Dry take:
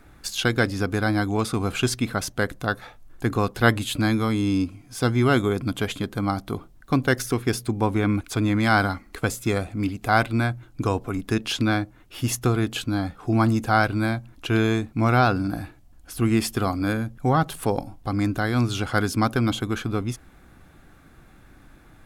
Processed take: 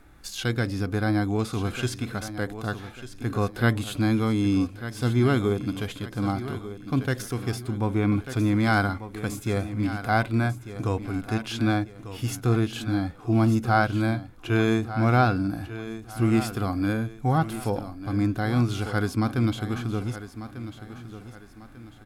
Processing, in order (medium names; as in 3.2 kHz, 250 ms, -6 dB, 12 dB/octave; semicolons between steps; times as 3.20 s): feedback delay 1195 ms, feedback 36%, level -13 dB; harmonic-percussive split percussive -9 dB